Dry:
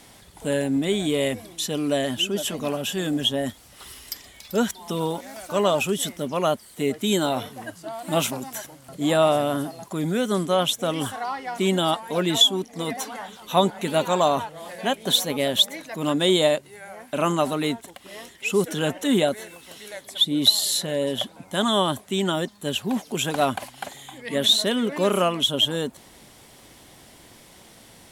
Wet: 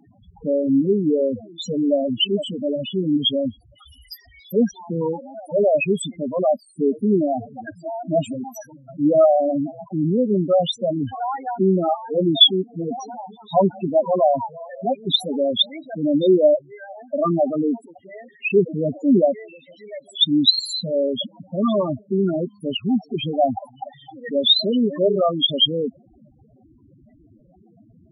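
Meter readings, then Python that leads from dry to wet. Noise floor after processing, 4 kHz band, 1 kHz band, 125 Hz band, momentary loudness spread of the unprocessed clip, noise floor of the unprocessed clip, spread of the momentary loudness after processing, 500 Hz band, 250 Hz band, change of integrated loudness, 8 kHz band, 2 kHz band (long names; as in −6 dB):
−54 dBFS, +2.0 dB, 0.0 dB, +2.0 dB, 16 LU, −50 dBFS, 16 LU, +4.5 dB, +4.5 dB, +3.0 dB, below −10 dB, −5.0 dB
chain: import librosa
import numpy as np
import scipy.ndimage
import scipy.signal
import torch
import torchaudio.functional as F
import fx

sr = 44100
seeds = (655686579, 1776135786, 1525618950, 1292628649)

y = fx.spec_topn(x, sr, count=4)
y = F.gain(torch.from_numpy(y), 6.0).numpy()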